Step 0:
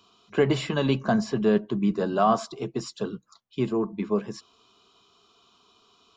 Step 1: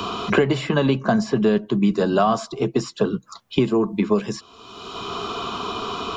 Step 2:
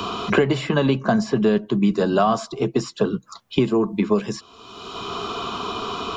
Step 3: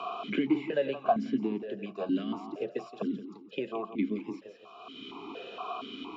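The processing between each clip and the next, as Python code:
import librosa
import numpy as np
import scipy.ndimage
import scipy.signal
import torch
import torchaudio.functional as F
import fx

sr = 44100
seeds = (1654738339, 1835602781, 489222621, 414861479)

y1 = fx.band_squash(x, sr, depth_pct=100)
y1 = y1 * 10.0 ** (5.5 / 20.0)
y2 = y1
y3 = fx.echo_feedback(y2, sr, ms=172, feedback_pct=42, wet_db=-10.5)
y3 = fx.vowel_held(y3, sr, hz=4.3)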